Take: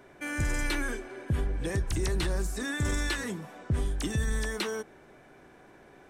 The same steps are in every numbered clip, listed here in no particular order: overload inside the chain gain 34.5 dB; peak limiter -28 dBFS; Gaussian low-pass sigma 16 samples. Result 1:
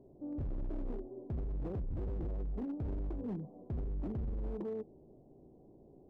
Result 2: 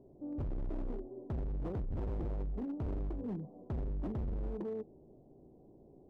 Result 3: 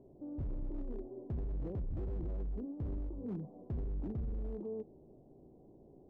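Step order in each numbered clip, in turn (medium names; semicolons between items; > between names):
Gaussian low-pass > peak limiter > overload inside the chain; Gaussian low-pass > overload inside the chain > peak limiter; peak limiter > Gaussian low-pass > overload inside the chain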